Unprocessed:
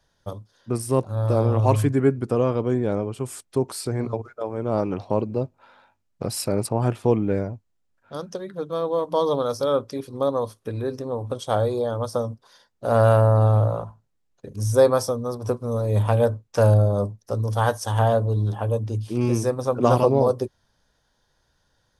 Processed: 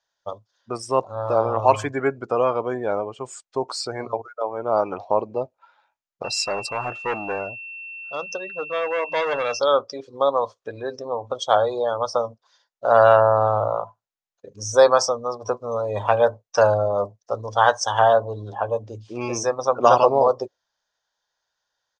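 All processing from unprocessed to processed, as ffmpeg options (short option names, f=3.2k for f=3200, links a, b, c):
-filter_complex "[0:a]asettb=1/sr,asplit=3[a][b][c];[a]atrim=end=6.244[d];[b]atrim=start=6.24:end=9.59,asetpts=PTS-STARTPTS,afade=t=in:d=0.004:c=qsin,afade=t=out:st=3.346:d=0.004:c=qsin,asoftclip=type=hard:threshold=-23dB,aeval=exprs='val(0)+0.00794*sin(2*PI*2700*n/s)':c=same[e];[c]atrim=start=9.586[f];[d][e]acrossfade=d=0.004:c1=hsin:c2=qsin[g];[g][f]acrossfade=d=0.004:c1=qsin:c2=hsin,lowshelf=f=240:g=-11,afftdn=nr=16:nf=-40,firequalizer=gain_entry='entry(240,0);entry(670,12);entry(7100,14);entry(10000,-16)':delay=0.05:min_phase=1,volume=-4dB"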